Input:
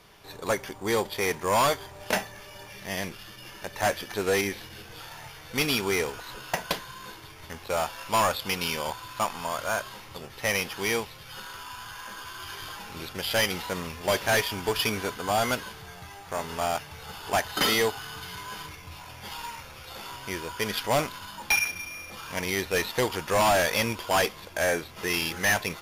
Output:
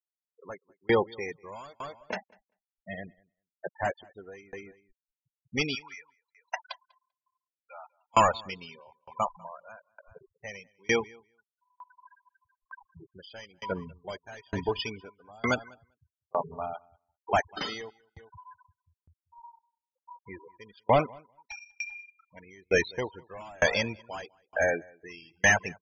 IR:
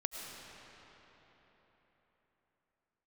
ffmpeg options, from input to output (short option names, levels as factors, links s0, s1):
-filter_complex "[0:a]asettb=1/sr,asplit=3[s0][s1][s2];[s0]atrim=end=5.754[s3];[s1]atrim=start=5.75:end=8.14,asetpts=PTS-STARTPTS,afade=t=in:d=0.004:c=qsin,afade=t=out:st=2.386:d=0.004:c=qsin,highpass=f=710:w=0.5412,highpass=f=710:w=1.3066[s4];[s2]atrim=start=8.136[s5];[s3][s4]acrossfade=d=0.004:c1=hsin:c2=qsin[s6];[s6][s5]acrossfade=d=0.004:c1=qsin:c2=hsin,afftfilt=real='re*gte(hypot(re,im),0.0631)':imag='im*gte(hypot(re,im),0.0631)':win_size=1024:overlap=0.75,aresample=16000,aresample=44100,asplit=2[s7][s8];[s8]adelay=196,lowpass=f=3900:p=1,volume=0.112,asplit=2[s9][s10];[s10]adelay=196,lowpass=f=3900:p=1,volume=0.22[s11];[s7][s9][s11]amix=inputs=3:normalize=0,aeval=exprs='val(0)*pow(10,-34*if(lt(mod(1.1*n/s,1),2*abs(1.1)/1000),1-mod(1.1*n/s,1)/(2*abs(1.1)/1000),(mod(1.1*n/s,1)-2*abs(1.1)/1000)/(1-2*abs(1.1)/1000))/20)':c=same,volume=1.78"